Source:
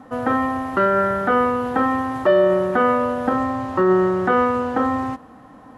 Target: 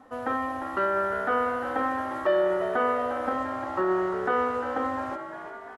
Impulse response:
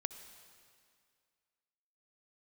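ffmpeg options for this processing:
-filter_complex "[0:a]equalizer=f=150:t=o:w=1.3:g=-12.5,asplit=2[a][b];[b]asplit=8[c][d][e][f][g][h][i][j];[c]adelay=350,afreqshift=66,volume=-10.5dB[k];[d]adelay=700,afreqshift=132,volume=-14.7dB[l];[e]adelay=1050,afreqshift=198,volume=-18.8dB[m];[f]adelay=1400,afreqshift=264,volume=-23dB[n];[g]adelay=1750,afreqshift=330,volume=-27.1dB[o];[h]adelay=2100,afreqshift=396,volume=-31.3dB[p];[i]adelay=2450,afreqshift=462,volume=-35.4dB[q];[j]adelay=2800,afreqshift=528,volume=-39.6dB[r];[k][l][m][n][o][p][q][r]amix=inputs=8:normalize=0[s];[a][s]amix=inputs=2:normalize=0,volume=-7dB"

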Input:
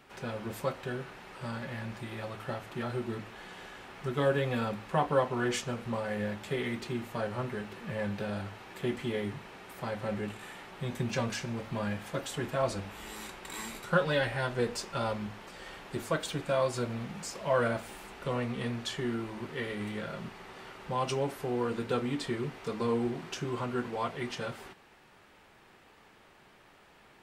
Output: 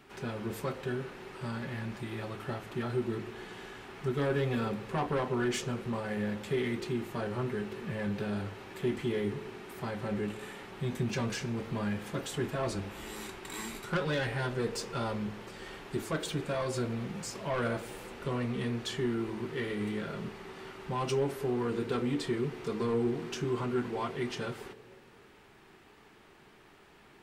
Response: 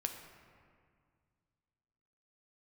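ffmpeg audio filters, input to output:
-filter_complex "[0:a]asoftclip=type=tanh:threshold=-25.5dB,asplit=2[a][b];[b]lowpass=f=430:t=q:w=4.8[c];[1:a]atrim=start_sample=2205[d];[c][d]afir=irnorm=-1:irlink=0,volume=-11dB[e];[a][e]amix=inputs=2:normalize=0"

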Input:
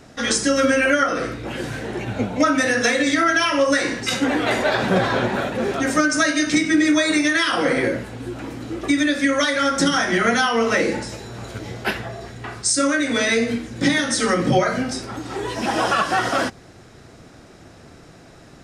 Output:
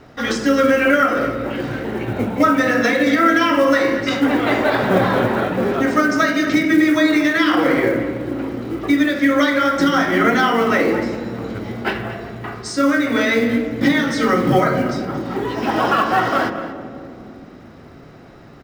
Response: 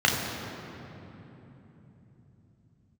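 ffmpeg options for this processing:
-filter_complex "[0:a]lowpass=3.5k,acrusher=bits=7:mode=log:mix=0:aa=0.000001,asplit=2[a][b];[b]adelay=227.4,volume=-13dB,highshelf=f=4k:g=-5.12[c];[a][c]amix=inputs=2:normalize=0,asplit=2[d][e];[1:a]atrim=start_sample=2205,asetrate=74970,aresample=44100,lowpass=3.2k[f];[e][f]afir=irnorm=-1:irlink=0,volume=-19dB[g];[d][g]amix=inputs=2:normalize=0,volume=1.5dB"

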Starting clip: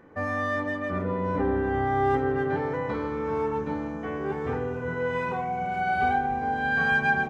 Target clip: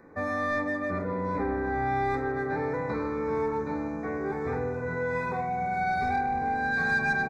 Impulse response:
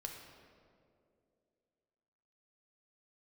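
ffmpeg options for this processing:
-filter_complex "[0:a]acrossover=split=390|1800[a][b][c];[a]alimiter=level_in=3.5dB:limit=-24dB:level=0:latency=1,volume=-3.5dB[d];[b]asoftclip=type=tanh:threshold=-26.5dB[e];[d][e][c]amix=inputs=3:normalize=0,asuperstop=centerf=3000:order=8:qfactor=2.7,bandreject=f=50:t=h:w=6,bandreject=f=100:t=h:w=6,bandreject=f=150:t=h:w=6,asplit=2[f][g];[g]adelay=47,volume=-13dB[h];[f][h]amix=inputs=2:normalize=0"

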